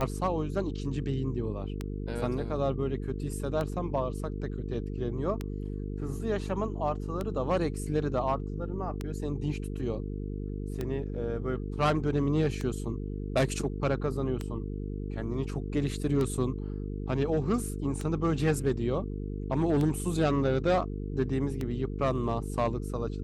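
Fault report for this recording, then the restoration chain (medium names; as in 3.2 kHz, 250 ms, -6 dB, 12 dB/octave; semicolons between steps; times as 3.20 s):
buzz 50 Hz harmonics 9 -35 dBFS
tick 33 1/3 rpm -19 dBFS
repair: de-click; de-hum 50 Hz, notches 9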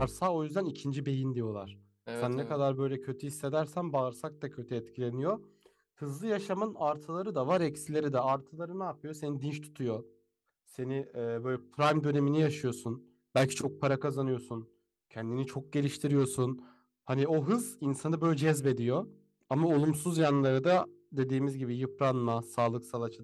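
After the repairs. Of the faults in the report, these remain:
nothing left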